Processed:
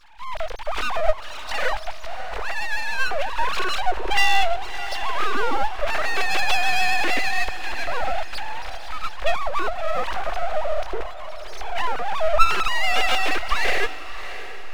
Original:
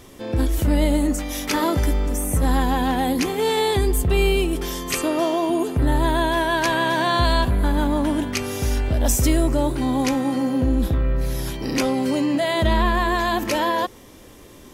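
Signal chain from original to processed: sine-wave speech; full-wave rectifier; diffused feedback echo 0.644 s, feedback 43%, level -12.5 dB

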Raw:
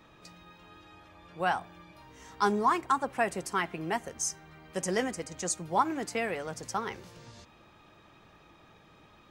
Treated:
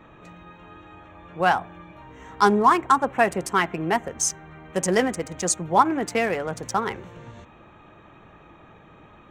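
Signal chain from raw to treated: Wiener smoothing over 9 samples; gain +9 dB

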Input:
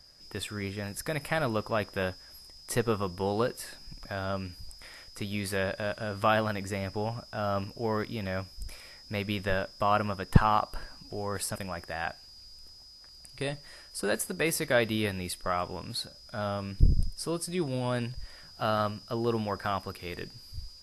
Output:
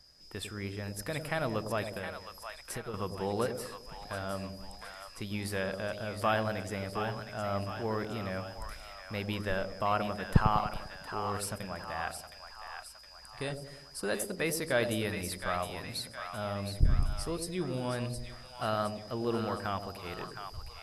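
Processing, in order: 1.84–2.94 compressor 10:1, threshold -33 dBFS, peak gain reduction 12 dB; split-band echo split 720 Hz, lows 99 ms, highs 0.715 s, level -7 dB; gain -4 dB

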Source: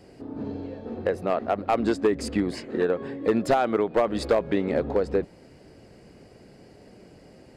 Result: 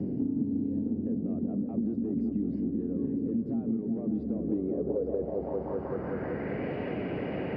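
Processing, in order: HPF 73 Hz; reverse; compressor, threshold -32 dBFS, peak gain reduction 14.5 dB; reverse; limiter -30 dBFS, peak gain reduction 7.5 dB; on a send: repeats that get brighter 0.19 s, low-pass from 400 Hz, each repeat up 1 oct, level -3 dB; on the sum: low-pass sweep 240 Hz -> 2700 Hz, 4.29–6.76; three-band squash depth 100%; gain +3.5 dB

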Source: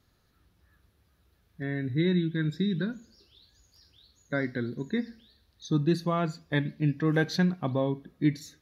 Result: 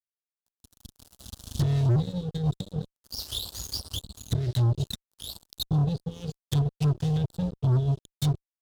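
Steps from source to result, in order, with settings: recorder AGC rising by 8.7 dB/s; modulation noise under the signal 25 dB; Chebyshev band-stop 110–2900 Hz, order 4; low shelf 170 Hz -8.5 dB; treble ducked by the level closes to 610 Hz, closed at -43.5 dBFS; fuzz box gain 51 dB, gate -60 dBFS; bell 2200 Hz -14.5 dB 1 oct; gain -5.5 dB

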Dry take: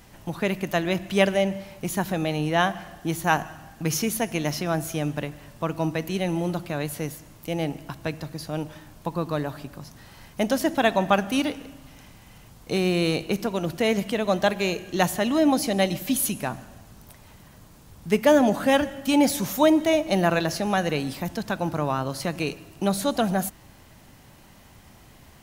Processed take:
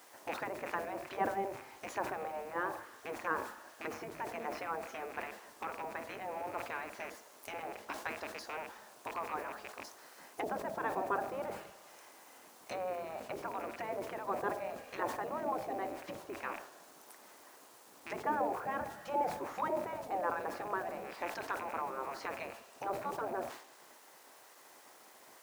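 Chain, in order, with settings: rattling part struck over -37 dBFS, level -25 dBFS; treble ducked by the level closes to 930 Hz, closed at -21 dBFS; high shelf 7400 Hz -7 dB; spectral gate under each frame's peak -10 dB weak; bell 3200 Hz -13 dB 1.3 oct; bit-crush 10-bit; HPF 630 Hz 6 dB/oct; sustainer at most 87 dB/s; gain +1.5 dB

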